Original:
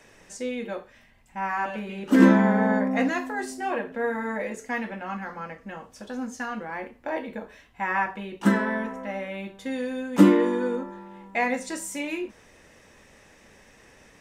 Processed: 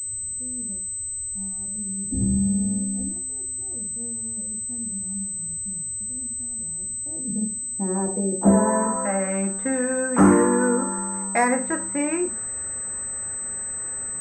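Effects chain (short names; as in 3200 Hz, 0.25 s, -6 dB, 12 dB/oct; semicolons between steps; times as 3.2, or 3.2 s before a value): hard clip -15.5 dBFS, distortion -10 dB; on a send at -16 dB: reverb RT60 0.30 s, pre-delay 22 ms; on the sum: low-pass sweep 100 Hz -> 1400 Hz, 6.87–9.09; in parallel at +2 dB: compressor, threshold -29 dBFS, peak gain reduction 15 dB; 6.15–6.69 on the sum: thirty-one-band EQ 200 Hz -10 dB, 630 Hz +6 dB, 1000 Hz -8 dB, 2500 Hz +12 dB; pulse-width modulation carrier 8100 Hz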